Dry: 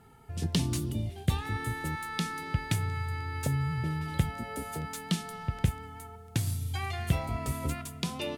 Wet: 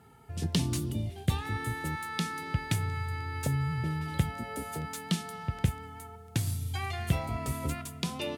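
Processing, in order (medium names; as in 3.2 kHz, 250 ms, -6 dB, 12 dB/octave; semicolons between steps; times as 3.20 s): high-pass 57 Hz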